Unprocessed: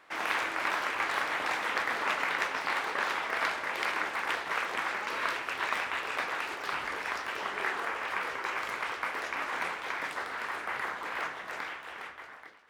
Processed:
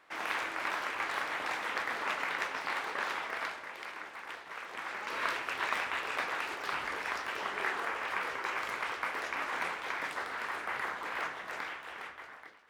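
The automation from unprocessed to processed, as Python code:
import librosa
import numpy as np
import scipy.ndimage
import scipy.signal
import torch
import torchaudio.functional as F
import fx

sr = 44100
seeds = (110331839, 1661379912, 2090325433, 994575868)

y = fx.gain(x, sr, db=fx.line((3.22, -4.0), (3.82, -12.0), (4.56, -12.0), (5.23, -1.5)))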